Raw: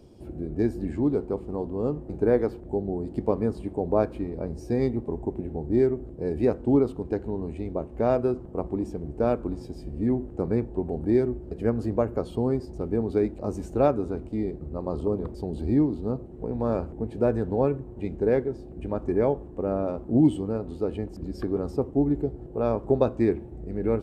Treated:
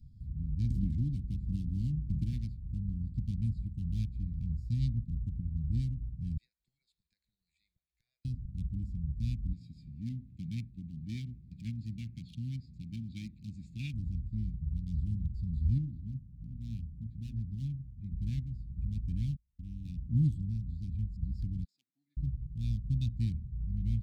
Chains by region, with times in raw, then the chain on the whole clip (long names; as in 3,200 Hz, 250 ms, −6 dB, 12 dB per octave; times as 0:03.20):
0:00.70–0:02.33: dynamic equaliser 360 Hz, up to +6 dB, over −37 dBFS, Q 1.3 + multiband upward and downward compressor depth 100%
0:06.37–0:08.25: elliptic high-pass filter 530 Hz, stop band 50 dB + downward compressor 3 to 1, threshold −43 dBFS
0:09.53–0:13.94: high-pass filter 180 Hz + parametric band 2,600 Hz +14 dB 0.99 octaves + treble cut that deepens with the level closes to 3,000 Hz, closed at −18.5 dBFS
0:15.78–0:18.12: low-pass filter 1,300 Hz 6 dB per octave + low-shelf EQ 150 Hz −8.5 dB + mains-hum notches 60/120/180/240/300/360/420/480/540 Hz
0:19.36–0:19.85: noise gate −34 dBFS, range −40 dB + downward compressor 1.5 to 1, threshold −40 dBFS + comb filter 3.6 ms, depth 39%
0:21.64–0:22.17: high-pass filter 780 Hz 24 dB per octave + high-shelf EQ 3,100 Hz −9.5 dB
whole clip: adaptive Wiener filter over 15 samples; inverse Chebyshev band-stop filter 410–1,300 Hz, stop band 60 dB; low-shelf EQ 87 Hz +6 dB